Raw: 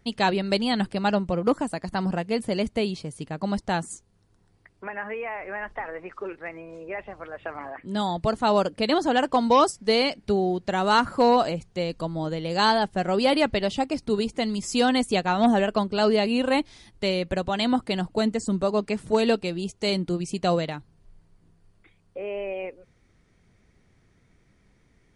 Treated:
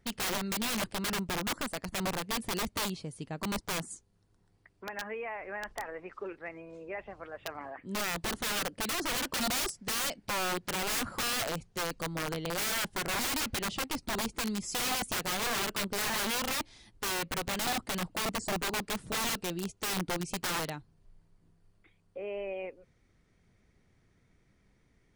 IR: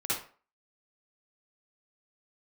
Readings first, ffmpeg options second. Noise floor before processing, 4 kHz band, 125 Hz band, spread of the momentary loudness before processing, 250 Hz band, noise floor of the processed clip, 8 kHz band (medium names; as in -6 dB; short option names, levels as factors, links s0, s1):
-63 dBFS, -4.0 dB, -9.5 dB, 15 LU, -13.0 dB, -69 dBFS, +6.0 dB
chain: -af "aeval=exprs='(mod(11.2*val(0)+1,2)-1)/11.2':c=same,volume=0.501"